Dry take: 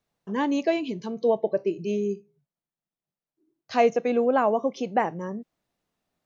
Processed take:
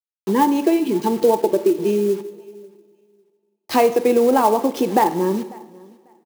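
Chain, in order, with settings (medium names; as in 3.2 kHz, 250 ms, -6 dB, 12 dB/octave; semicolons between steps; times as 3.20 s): word length cut 8-bit, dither none; high-pass 150 Hz; bass shelf 380 Hz +10.5 dB; band-stop 1.5 kHz, Q 21; small resonant body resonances 350/870 Hz, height 15 dB; compression 4:1, threshold -19 dBFS, peak gain reduction 11.5 dB; tilt EQ +2 dB/octave; on a send: feedback delay 545 ms, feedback 18%, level -24 dB; on the sum: two-slope reverb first 0.85 s, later 2.7 s, DRR 10 dB; sampling jitter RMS 0.024 ms; trim +7 dB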